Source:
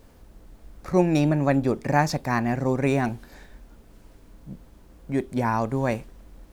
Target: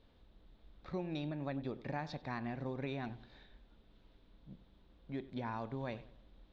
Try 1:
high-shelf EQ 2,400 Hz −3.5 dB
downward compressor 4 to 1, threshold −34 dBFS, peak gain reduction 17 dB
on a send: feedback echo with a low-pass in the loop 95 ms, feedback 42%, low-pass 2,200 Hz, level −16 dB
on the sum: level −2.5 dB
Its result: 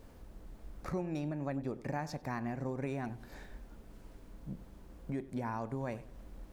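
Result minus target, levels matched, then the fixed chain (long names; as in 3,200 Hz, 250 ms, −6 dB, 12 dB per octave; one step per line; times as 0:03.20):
4,000 Hz band −6.5 dB
transistor ladder low-pass 4,000 Hz, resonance 70%
high-shelf EQ 2,400 Hz −3.5 dB
downward compressor 4 to 1, threshold −34 dBFS, peak gain reduction 8.5 dB
on a send: feedback echo with a low-pass in the loop 95 ms, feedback 42%, low-pass 2,200 Hz, level −16 dB
on the sum: level −2.5 dB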